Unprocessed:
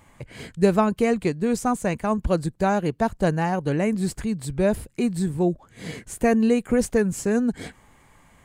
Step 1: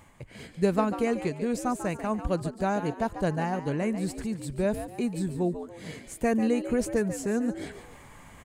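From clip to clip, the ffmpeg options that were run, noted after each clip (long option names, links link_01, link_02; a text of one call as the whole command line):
ffmpeg -i in.wav -filter_complex "[0:a]areverse,acompressor=mode=upward:threshold=-32dB:ratio=2.5,areverse,asplit=5[link_01][link_02][link_03][link_04][link_05];[link_02]adelay=143,afreqshift=81,volume=-11dB[link_06];[link_03]adelay=286,afreqshift=162,volume=-20.1dB[link_07];[link_04]adelay=429,afreqshift=243,volume=-29.2dB[link_08];[link_05]adelay=572,afreqshift=324,volume=-38.4dB[link_09];[link_01][link_06][link_07][link_08][link_09]amix=inputs=5:normalize=0,volume=-6dB" out.wav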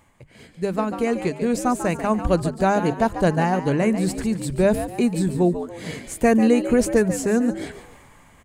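ffmpeg -i in.wav -af "bandreject=frequency=50:width_type=h:width=6,bandreject=frequency=100:width_type=h:width=6,bandreject=frequency=150:width_type=h:width=6,bandreject=frequency=200:width_type=h:width=6,dynaudnorm=framelen=150:gausssize=13:maxgain=13dB,volume=-2.5dB" out.wav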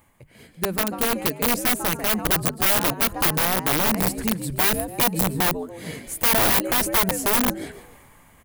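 ffmpeg -i in.wav -af "aeval=exprs='(mod(5.62*val(0)+1,2)-1)/5.62':channel_layout=same,aexciter=amount=3.4:drive=5.7:freq=10000,volume=-2dB" out.wav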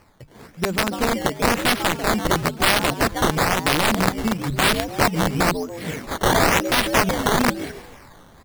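ffmpeg -i in.wav -filter_complex "[0:a]asplit=2[link_01][link_02];[link_02]alimiter=limit=-13.5dB:level=0:latency=1:release=216,volume=1dB[link_03];[link_01][link_03]amix=inputs=2:normalize=0,acrusher=samples=12:mix=1:aa=0.000001:lfo=1:lforange=12:lforate=1,volume=-1.5dB" out.wav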